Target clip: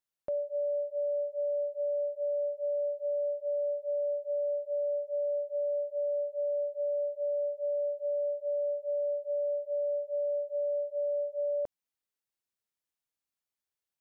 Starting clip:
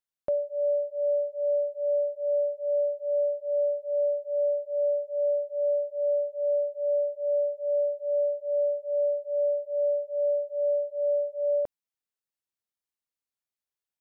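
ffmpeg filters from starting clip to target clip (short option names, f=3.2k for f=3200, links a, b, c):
-af "alimiter=level_in=3.5dB:limit=-24dB:level=0:latency=1:release=208,volume=-3.5dB"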